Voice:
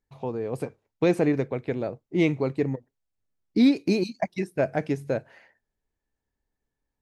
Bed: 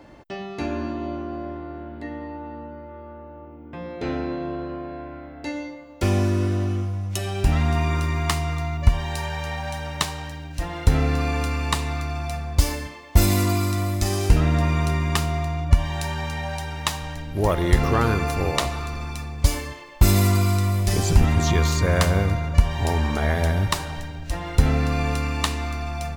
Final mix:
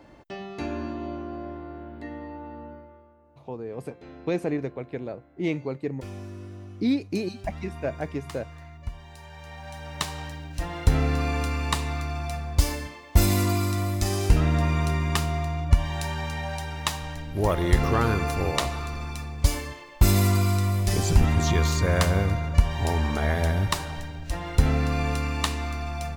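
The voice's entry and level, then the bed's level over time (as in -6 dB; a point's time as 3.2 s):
3.25 s, -5.0 dB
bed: 2.72 s -4 dB
3.16 s -18 dB
9.17 s -18 dB
10.19 s -2.5 dB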